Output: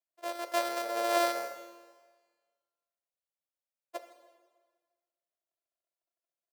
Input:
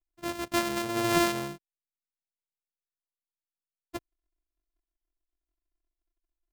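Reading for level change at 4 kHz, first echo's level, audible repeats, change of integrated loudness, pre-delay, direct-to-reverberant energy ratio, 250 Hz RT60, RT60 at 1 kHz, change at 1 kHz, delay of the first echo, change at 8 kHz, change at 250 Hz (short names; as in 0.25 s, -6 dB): -4.5 dB, -20.5 dB, 1, -3.5 dB, 20 ms, 9.0 dB, 1.5 s, 1.5 s, 0.0 dB, 0.159 s, -5.0 dB, -11.5 dB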